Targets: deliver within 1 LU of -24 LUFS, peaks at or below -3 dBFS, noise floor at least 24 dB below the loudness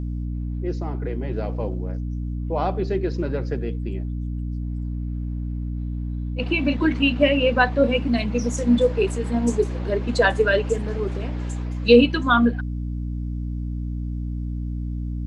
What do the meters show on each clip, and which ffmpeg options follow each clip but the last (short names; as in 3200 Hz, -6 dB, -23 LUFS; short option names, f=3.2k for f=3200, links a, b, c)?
hum 60 Hz; harmonics up to 300 Hz; hum level -25 dBFS; loudness -23.5 LUFS; peak -2.0 dBFS; loudness target -24.0 LUFS
-> -af "bandreject=f=60:t=h:w=4,bandreject=f=120:t=h:w=4,bandreject=f=180:t=h:w=4,bandreject=f=240:t=h:w=4,bandreject=f=300:t=h:w=4"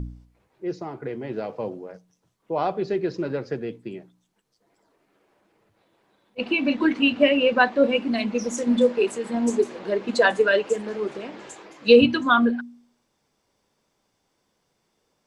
hum none; loudness -22.5 LUFS; peak -3.5 dBFS; loudness target -24.0 LUFS
-> -af "volume=-1.5dB"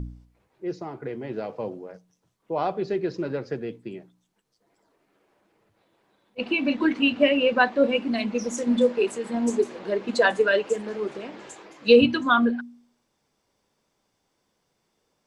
loudness -24.0 LUFS; peak -5.0 dBFS; noise floor -74 dBFS